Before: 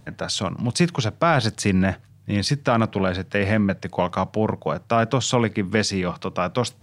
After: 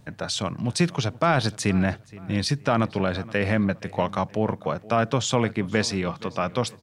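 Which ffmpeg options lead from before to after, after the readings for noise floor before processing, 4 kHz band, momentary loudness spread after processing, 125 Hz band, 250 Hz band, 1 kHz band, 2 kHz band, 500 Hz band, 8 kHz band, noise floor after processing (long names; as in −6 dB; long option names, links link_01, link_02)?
−52 dBFS, −2.5 dB, 5 LU, −2.5 dB, −2.5 dB, −2.5 dB, −2.5 dB, −2.5 dB, −2.5 dB, −50 dBFS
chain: -filter_complex "[0:a]asplit=2[link_01][link_02];[link_02]adelay=473,lowpass=frequency=3400:poles=1,volume=-19.5dB,asplit=2[link_03][link_04];[link_04]adelay=473,lowpass=frequency=3400:poles=1,volume=0.34,asplit=2[link_05][link_06];[link_06]adelay=473,lowpass=frequency=3400:poles=1,volume=0.34[link_07];[link_01][link_03][link_05][link_07]amix=inputs=4:normalize=0,volume=-2.5dB"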